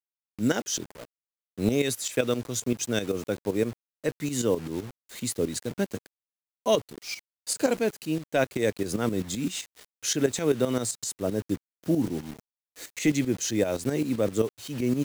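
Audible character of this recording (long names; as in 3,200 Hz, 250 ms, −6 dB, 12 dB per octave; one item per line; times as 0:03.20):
a quantiser's noise floor 8 bits, dither none
tremolo saw up 7.7 Hz, depth 70%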